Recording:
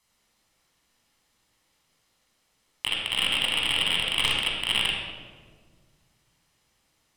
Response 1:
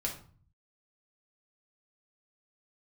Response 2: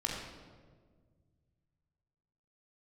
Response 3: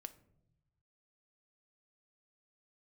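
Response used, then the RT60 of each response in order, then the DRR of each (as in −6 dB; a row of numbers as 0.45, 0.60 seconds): 2; 0.45 s, 1.6 s, non-exponential decay; −1.5, −2.5, 10.5 decibels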